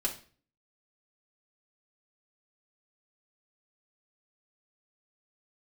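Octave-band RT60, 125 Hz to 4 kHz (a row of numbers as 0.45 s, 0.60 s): 0.60 s, 0.50 s, 0.45 s, 0.40 s, 0.40 s, 0.40 s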